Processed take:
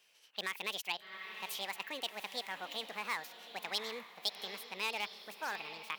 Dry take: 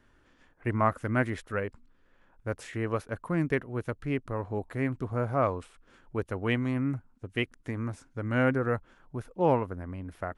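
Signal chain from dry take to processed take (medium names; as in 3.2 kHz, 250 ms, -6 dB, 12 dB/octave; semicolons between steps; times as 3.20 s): on a send: echo that smears into a reverb 1299 ms, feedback 42%, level -13 dB; on the sum: Chebyshev shaper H 3 -22 dB, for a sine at -11 dBFS; treble shelf 5.8 kHz -10.5 dB; speed mistake 45 rpm record played at 78 rpm; in parallel at -10.5 dB: wavefolder -25.5 dBFS; on the sum: peak limiter -21.5 dBFS, peak gain reduction 10.5 dB; high-pass 150 Hz; differentiator; trim +9 dB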